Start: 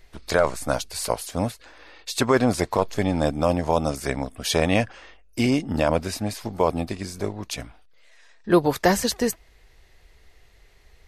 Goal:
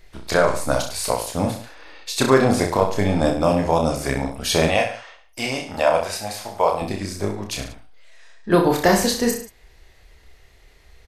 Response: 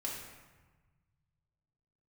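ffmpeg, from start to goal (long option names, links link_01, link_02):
-filter_complex "[0:a]asettb=1/sr,asplit=3[link_01][link_02][link_03];[link_01]atrim=end=4.684[link_04];[link_02]atrim=start=4.68:end=6.82,asetpts=PTS-STARTPTS,afade=type=in:duration=0.004:curve=qsin,afade=type=out:start_time=2.136:duration=0.004:curve=qsin,lowshelf=frequency=440:width_type=q:width=1.5:gain=-11[link_05];[link_03]atrim=start=6.816[link_06];[link_04][link_05]acrossfade=duration=0.004:curve1=hsin:curve2=qsin[link_07];[link_07][link_06]acrossfade=duration=0.004:curve1=qsin:curve2=hsin,aecho=1:1:30|63|99.3|139.2|183.2:0.631|0.398|0.251|0.158|0.1,volume=1.5dB"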